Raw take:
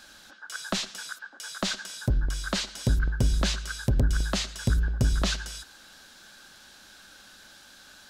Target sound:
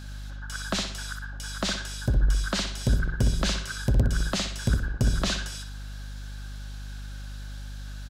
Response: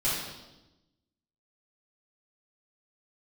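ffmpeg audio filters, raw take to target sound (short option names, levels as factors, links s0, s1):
-filter_complex "[0:a]aeval=exprs='val(0)+0.0112*(sin(2*PI*50*n/s)+sin(2*PI*2*50*n/s)/2+sin(2*PI*3*50*n/s)/3+sin(2*PI*4*50*n/s)/4+sin(2*PI*5*50*n/s)/5)':c=same,asplit=2[s0][s1];[s1]adelay=62,lowpass=f=4700:p=1,volume=0.562,asplit=2[s2][s3];[s3]adelay=62,lowpass=f=4700:p=1,volume=0.38,asplit=2[s4][s5];[s5]adelay=62,lowpass=f=4700:p=1,volume=0.38,asplit=2[s6][s7];[s7]adelay=62,lowpass=f=4700:p=1,volume=0.38,asplit=2[s8][s9];[s9]adelay=62,lowpass=f=4700:p=1,volume=0.38[s10];[s2][s4][s6][s8][s10]amix=inputs=5:normalize=0[s11];[s0][s11]amix=inputs=2:normalize=0"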